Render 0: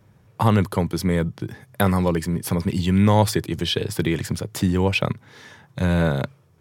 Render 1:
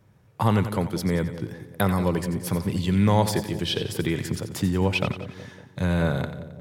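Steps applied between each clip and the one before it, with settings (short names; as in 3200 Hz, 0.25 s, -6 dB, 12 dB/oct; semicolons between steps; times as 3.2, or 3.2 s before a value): split-band echo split 630 Hz, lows 0.186 s, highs 89 ms, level -11 dB; gain -3.5 dB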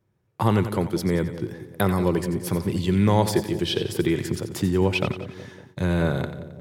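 gate -49 dBFS, range -13 dB; bell 360 Hz +8 dB 0.32 oct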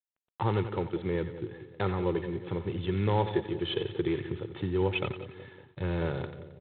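comb 2.3 ms, depth 48%; gain -8 dB; G.726 24 kbps 8000 Hz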